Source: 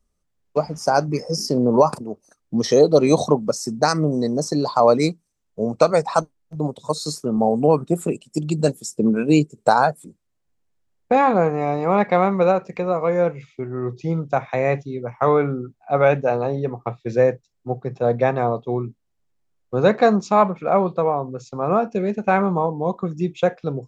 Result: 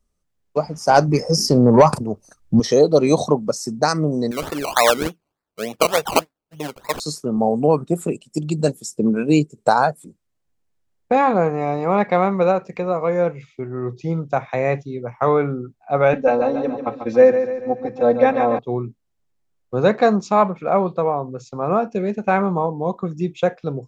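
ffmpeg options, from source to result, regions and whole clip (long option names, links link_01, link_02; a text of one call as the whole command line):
ffmpeg -i in.wav -filter_complex "[0:a]asettb=1/sr,asplit=3[link_01][link_02][link_03];[link_01]atrim=end=0.894[link_04];[link_02]atrim=start=0.89:end=2.6,asetpts=PTS-STARTPTS,afade=type=in:duration=0.004:curve=qsin,afade=type=out:start_time=1.706:duration=0.004:curve=qsin,asubboost=boost=7:cutoff=150,acontrast=63[link_05];[link_03]atrim=start=2.596[link_06];[link_04][link_05]acrossfade=duration=0.004:curve1=hsin:curve2=qsin[link_07];[link_07][link_06]acrossfade=duration=0.004:curve1=qsin:curve2=hsin,asettb=1/sr,asplit=3[link_08][link_09][link_10];[link_08]atrim=end=4.314[link_11];[link_09]atrim=start=4.31:end=7,asetpts=PTS-STARTPTS,afade=type=in:duration=0.004:curve=qsin,afade=type=out:start_time=2.686:duration=0.004:curve=qsin,highpass=frequency=510:poles=1,equalizer=frequency=1700:width_type=o:width=1.1:gain=8.5,acrusher=samples=20:mix=1:aa=0.000001:lfo=1:lforange=12:lforate=3.4[link_12];[link_10]atrim=start=6.996[link_13];[link_11][link_12]acrossfade=duration=0.004:curve1=hsin:curve2=qsin[link_14];[link_14][link_13]acrossfade=duration=0.004:curve1=qsin:curve2=hsin,asettb=1/sr,asplit=3[link_15][link_16][link_17];[link_15]atrim=end=16.134[link_18];[link_16]atrim=start=16.13:end=18.59,asetpts=PTS-STARTPTS,afade=type=in:duration=0.004:curve=qsin,afade=type=out:start_time=2.456:duration=0.004:curve=qsin,lowpass=6000,aecho=1:1:3.8:0.98,atrim=end_sample=108486,aecho=1:1:142|284|426|568|710|852:0.376|0.188|0.094|0.047|0.0235|0.0117,atrim=end_sample=108486[link_19];[link_17]atrim=start=18.586[link_20];[link_18][link_19]acrossfade=duration=0.004:curve1=hsin:curve2=qsin[link_21];[link_21][link_20]acrossfade=duration=0.004:curve1=qsin:curve2=hsin" out.wav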